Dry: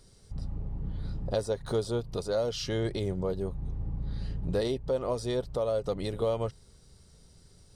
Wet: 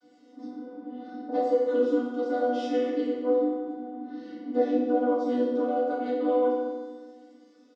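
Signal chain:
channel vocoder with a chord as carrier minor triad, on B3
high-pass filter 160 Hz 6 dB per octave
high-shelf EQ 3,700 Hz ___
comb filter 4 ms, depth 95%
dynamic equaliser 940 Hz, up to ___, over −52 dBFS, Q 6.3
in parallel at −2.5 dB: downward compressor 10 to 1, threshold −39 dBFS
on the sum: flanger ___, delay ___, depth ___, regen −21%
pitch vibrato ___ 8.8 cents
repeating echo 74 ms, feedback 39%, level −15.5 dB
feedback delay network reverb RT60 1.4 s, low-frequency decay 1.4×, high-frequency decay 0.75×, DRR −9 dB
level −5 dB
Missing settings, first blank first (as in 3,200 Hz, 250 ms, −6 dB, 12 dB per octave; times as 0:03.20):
−6.5 dB, +3 dB, 1.4 Hz, 5.1 ms, 3.6 ms, 0.34 Hz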